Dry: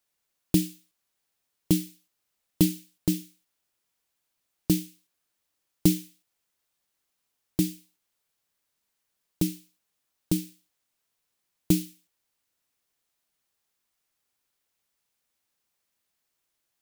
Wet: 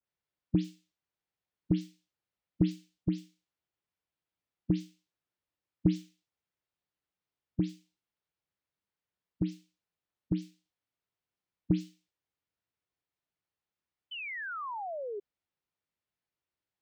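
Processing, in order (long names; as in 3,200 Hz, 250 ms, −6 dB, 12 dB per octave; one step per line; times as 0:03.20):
every frequency bin delayed by itself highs late, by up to 102 ms
high-pass filter 52 Hz
low-shelf EQ 220 Hz +7 dB
sound drawn into the spectrogram fall, 0:14.11–0:15.20, 390–3,100 Hz −29 dBFS
high-frequency loss of the air 190 metres
level −8 dB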